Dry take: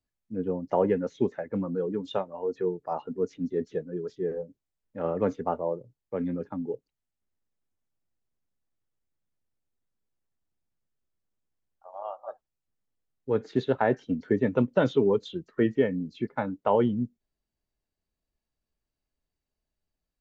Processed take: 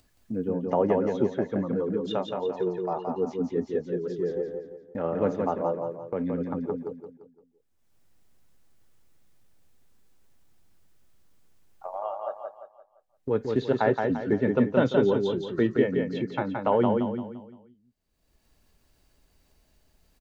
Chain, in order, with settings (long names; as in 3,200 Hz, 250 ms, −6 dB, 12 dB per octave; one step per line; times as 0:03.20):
downward expander −52 dBFS
upward compression, threshold −26 dBFS
on a send: repeating echo 172 ms, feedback 39%, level −4 dB